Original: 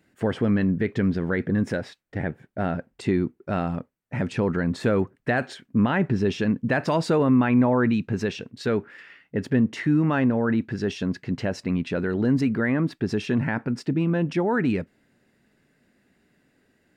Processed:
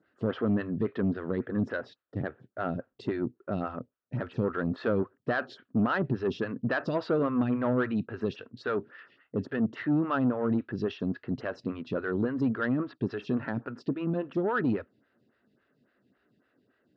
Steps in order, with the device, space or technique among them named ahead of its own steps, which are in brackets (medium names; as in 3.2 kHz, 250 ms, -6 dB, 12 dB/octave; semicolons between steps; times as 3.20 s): vibe pedal into a guitar amplifier (lamp-driven phase shifter 3.6 Hz; valve stage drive 18 dB, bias 0.25; cabinet simulation 78–4400 Hz, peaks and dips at 120 Hz +4 dB, 170 Hz -4 dB, 840 Hz -5 dB, 1.3 kHz +6 dB, 2.2 kHz -9 dB); trim -1 dB